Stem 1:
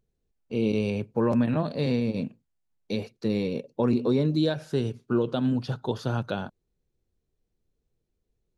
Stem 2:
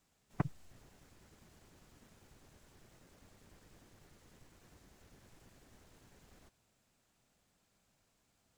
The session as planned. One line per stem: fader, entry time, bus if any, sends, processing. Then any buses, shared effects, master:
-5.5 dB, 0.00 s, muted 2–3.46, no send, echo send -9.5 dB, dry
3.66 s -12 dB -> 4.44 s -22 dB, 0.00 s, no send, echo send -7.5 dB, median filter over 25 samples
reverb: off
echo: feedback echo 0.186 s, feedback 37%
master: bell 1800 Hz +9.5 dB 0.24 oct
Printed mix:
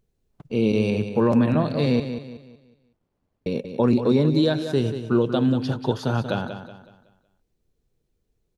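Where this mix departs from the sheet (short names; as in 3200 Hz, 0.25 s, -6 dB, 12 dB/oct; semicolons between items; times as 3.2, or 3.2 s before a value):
stem 1 -5.5 dB -> +4.5 dB; master: missing bell 1800 Hz +9.5 dB 0.24 oct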